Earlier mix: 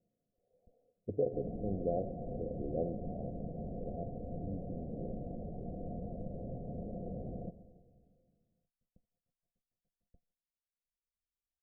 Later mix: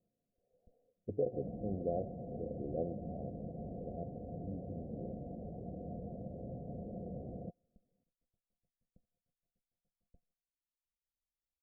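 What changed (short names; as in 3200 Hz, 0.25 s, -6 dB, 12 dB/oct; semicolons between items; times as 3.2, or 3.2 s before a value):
second sound: add HPF 57 Hz; reverb: off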